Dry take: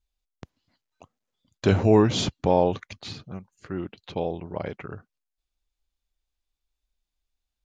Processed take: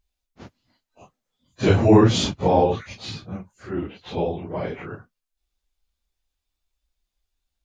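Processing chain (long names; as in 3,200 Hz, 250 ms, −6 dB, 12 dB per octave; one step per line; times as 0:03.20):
random phases in long frames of 100 ms
level +4 dB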